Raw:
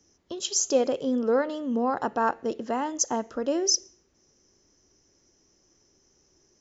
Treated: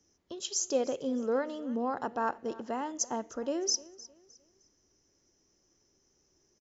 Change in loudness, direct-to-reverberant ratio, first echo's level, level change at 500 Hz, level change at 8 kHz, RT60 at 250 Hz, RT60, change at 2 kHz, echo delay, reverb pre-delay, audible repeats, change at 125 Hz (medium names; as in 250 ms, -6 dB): -6.5 dB, no reverb, -20.0 dB, -6.5 dB, no reading, no reverb, no reverb, -6.5 dB, 307 ms, no reverb, 2, -6.5 dB